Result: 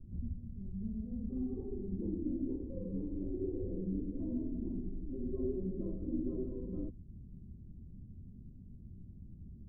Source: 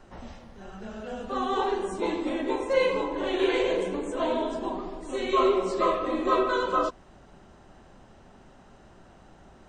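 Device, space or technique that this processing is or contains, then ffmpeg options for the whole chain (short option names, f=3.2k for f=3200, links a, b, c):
the neighbour's flat through the wall: -af "lowpass=f=230:w=0.5412,lowpass=f=230:w=1.3066,equalizer=f=87:t=o:w=0.92:g=7,volume=3dB"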